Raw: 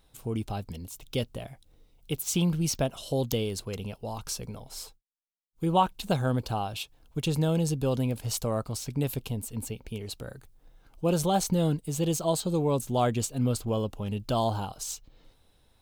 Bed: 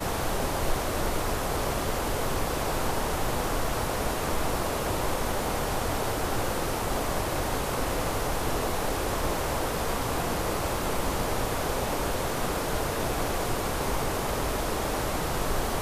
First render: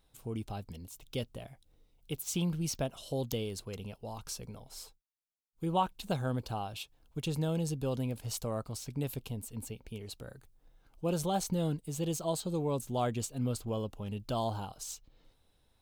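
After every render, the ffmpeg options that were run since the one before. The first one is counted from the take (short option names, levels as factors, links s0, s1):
-af "volume=0.473"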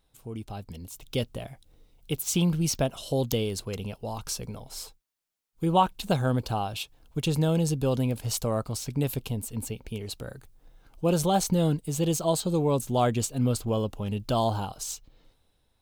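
-af "dynaudnorm=f=140:g=11:m=2.51"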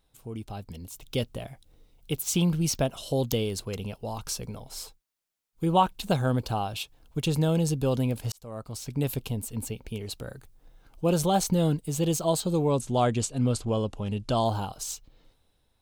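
-filter_complex "[0:a]asettb=1/sr,asplit=3[s0][s1][s2];[s0]atrim=end=12.694[s3];[s1]atrim=start=12.69:end=14.45,asetpts=PTS-STARTPTS,afade=t=in:d=0.004:c=qsin,afade=t=out:st=1.756:d=0.004:c=qsin,lowpass=f=10000:w=0.5412,lowpass=f=10000:w=1.3066[s4];[s2]atrim=start=14.446[s5];[s3][s4]acrossfade=d=0.004:c1=hsin:c2=qsin[s6];[s6][s5]acrossfade=d=0.004:c1=qsin:c2=hsin,asplit=2[s7][s8];[s7]atrim=end=8.32,asetpts=PTS-STARTPTS,afade=t=out:st=8.316:d=0.004:c=hsin[s9];[s8]atrim=start=8.32,asetpts=PTS-STARTPTS,afade=t=in:d=0.75[s10];[s9][s10]concat=n=2:v=0:a=1"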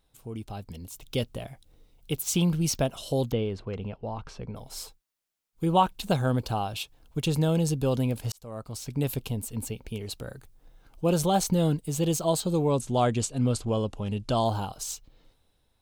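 -filter_complex "[0:a]asplit=3[s0][s1][s2];[s0]afade=t=out:st=3.3:d=0.02[s3];[s1]lowpass=2200,afade=t=in:st=3.3:d=0.02,afade=t=out:st=4.55:d=0.02[s4];[s2]afade=t=in:st=4.55:d=0.02[s5];[s3][s4][s5]amix=inputs=3:normalize=0"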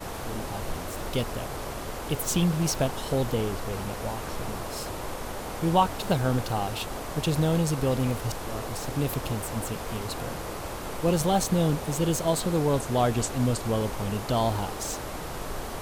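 -filter_complex "[1:a]volume=0.473[s0];[0:a][s0]amix=inputs=2:normalize=0"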